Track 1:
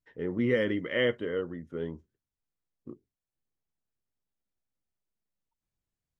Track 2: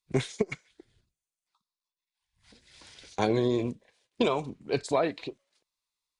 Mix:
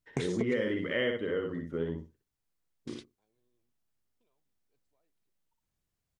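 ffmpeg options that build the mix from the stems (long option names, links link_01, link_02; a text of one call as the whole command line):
ffmpeg -i stem1.wav -i stem2.wav -filter_complex "[0:a]volume=3dB,asplit=3[link_01][link_02][link_03];[link_02]volume=-4.5dB[link_04];[1:a]volume=0dB[link_05];[link_03]apad=whole_len=273036[link_06];[link_05][link_06]sidechaingate=range=-55dB:threshold=-48dB:ratio=16:detection=peak[link_07];[link_04]aecho=0:1:61|122|183:1|0.17|0.0289[link_08];[link_01][link_07][link_08]amix=inputs=3:normalize=0,acompressor=threshold=-30dB:ratio=2.5" out.wav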